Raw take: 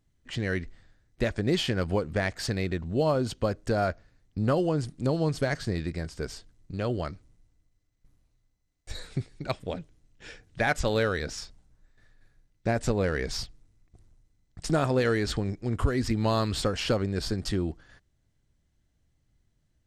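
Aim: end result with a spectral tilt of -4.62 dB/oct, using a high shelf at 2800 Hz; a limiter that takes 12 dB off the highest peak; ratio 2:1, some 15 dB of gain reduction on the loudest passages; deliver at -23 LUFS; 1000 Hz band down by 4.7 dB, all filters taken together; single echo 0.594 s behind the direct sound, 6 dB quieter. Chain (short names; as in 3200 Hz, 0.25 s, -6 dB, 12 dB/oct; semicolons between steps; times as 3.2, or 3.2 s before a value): bell 1000 Hz -7.5 dB; high shelf 2800 Hz +3 dB; compressor 2:1, threshold -48 dBFS; limiter -38 dBFS; echo 0.594 s -6 dB; gain +25.5 dB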